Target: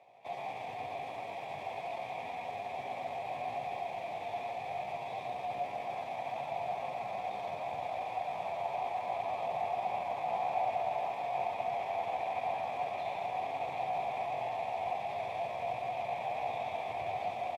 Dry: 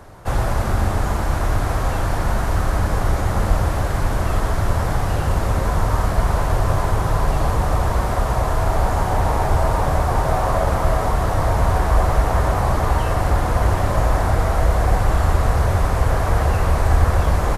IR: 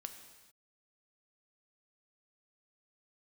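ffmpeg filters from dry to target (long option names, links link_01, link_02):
-filter_complex "[0:a]highpass=frequency=76:width=0.5412,highpass=frequency=76:width=1.3066,asplit=3[link_01][link_02][link_03];[link_02]asetrate=35002,aresample=44100,atempo=1.25992,volume=-6dB[link_04];[link_03]asetrate=55563,aresample=44100,atempo=0.793701,volume=-15dB[link_05];[link_01][link_04][link_05]amix=inputs=3:normalize=0,asplit=3[link_06][link_07][link_08];[link_06]bandpass=frequency=530:width_type=q:width=8,volume=0dB[link_09];[link_07]bandpass=frequency=1840:width_type=q:width=8,volume=-6dB[link_10];[link_08]bandpass=frequency=2480:width_type=q:width=8,volume=-9dB[link_11];[link_09][link_10][link_11]amix=inputs=3:normalize=0,aecho=1:1:127|248|799:0.447|0.1|0.299,asetrate=58866,aresample=44100,atempo=0.749154[link_12];[1:a]atrim=start_sample=2205[link_13];[link_12][link_13]afir=irnorm=-1:irlink=0,volume=-1.5dB"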